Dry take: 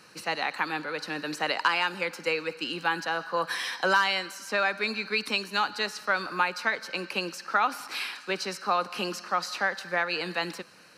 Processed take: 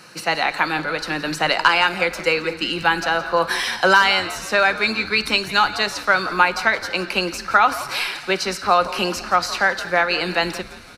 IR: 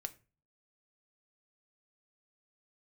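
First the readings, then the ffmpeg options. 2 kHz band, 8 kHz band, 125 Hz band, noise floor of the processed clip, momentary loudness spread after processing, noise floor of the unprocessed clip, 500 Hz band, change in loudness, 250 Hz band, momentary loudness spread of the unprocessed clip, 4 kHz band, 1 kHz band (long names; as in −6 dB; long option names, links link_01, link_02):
+9.5 dB, +9.5 dB, +10.5 dB, −36 dBFS, 7 LU, −49 dBFS, +9.5 dB, +9.5 dB, +9.5 dB, 7 LU, +9.5 dB, +9.5 dB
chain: -filter_complex "[0:a]asplit=6[link_01][link_02][link_03][link_04][link_05][link_06];[link_02]adelay=171,afreqshift=-140,volume=-16dB[link_07];[link_03]adelay=342,afreqshift=-280,volume=-21.7dB[link_08];[link_04]adelay=513,afreqshift=-420,volume=-27.4dB[link_09];[link_05]adelay=684,afreqshift=-560,volume=-33dB[link_10];[link_06]adelay=855,afreqshift=-700,volume=-38.7dB[link_11];[link_01][link_07][link_08][link_09][link_10][link_11]amix=inputs=6:normalize=0,asplit=2[link_12][link_13];[1:a]atrim=start_sample=2205[link_14];[link_13][link_14]afir=irnorm=-1:irlink=0,volume=4.5dB[link_15];[link_12][link_15]amix=inputs=2:normalize=0,volume=2.5dB"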